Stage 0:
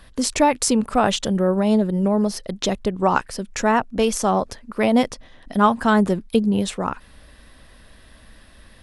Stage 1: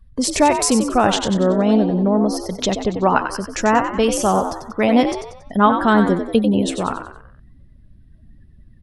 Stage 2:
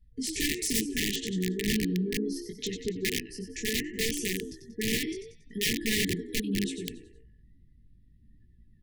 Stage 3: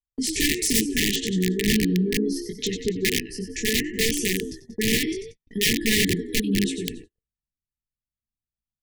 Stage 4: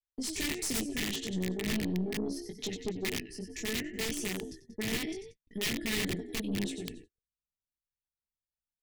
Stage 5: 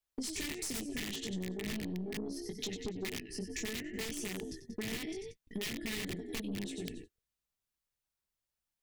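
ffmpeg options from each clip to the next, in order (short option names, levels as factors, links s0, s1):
-filter_complex "[0:a]afftdn=nr=28:nf=-41,asplit=2[s0][s1];[s1]asplit=5[s2][s3][s4][s5][s6];[s2]adelay=93,afreqshift=67,volume=0.398[s7];[s3]adelay=186,afreqshift=134,volume=0.172[s8];[s4]adelay=279,afreqshift=201,volume=0.0733[s9];[s5]adelay=372,afreqshift=268,volume=0.0316[s10];[s6]adelay=465,afreqshift=335,volume=0.0136[s11];[s7][s8][s9][s10][s11]amix=inputs=5:normalize=0[s12];[s0][s12]amix=inputs=2:normalize=0,volume=1.26"
-af "flanger=delay=17:depth=5.3:speed=0.71,aeval=exprs='(mod(3.98*val(0)+1,2)-1)/3.98':c=same,afftfilt=real='re*(1-between(b*sr/4096,470,1700))':imag='im*(1-between(b*sr/4096,470,1700))':win_size=4096:overlap=0.75,volume=0.376"
-af "agate=range=0.00562:threshold=0.00501:ratio=16:detection=peak,volume=2.24"
-af "aeval=exprs='(tanh(7.94*val(0)+0.5)-tanh(0.5))/7.94':c=same,volume=0.422"
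-af "acompressor=threshold=0.00891:ratio=6,volume=53.1,asoftclip=hard,volume=0.0188,volume=1.78"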